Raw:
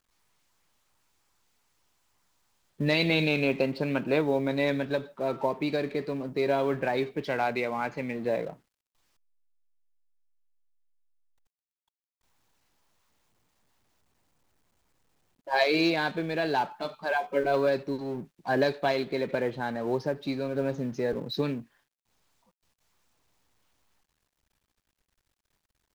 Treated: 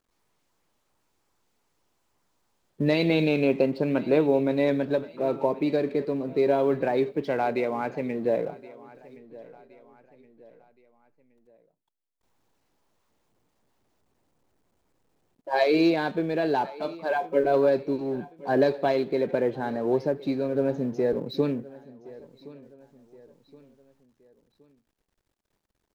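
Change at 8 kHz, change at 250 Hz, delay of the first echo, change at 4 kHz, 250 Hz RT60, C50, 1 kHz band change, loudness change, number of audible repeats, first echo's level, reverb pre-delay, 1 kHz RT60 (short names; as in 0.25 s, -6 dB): n/a, +4.5 dB, 1.07 s, -4.0 dB, none, none, +1.0 dB, +3.0 dB, 2, -20.0 dB, none, none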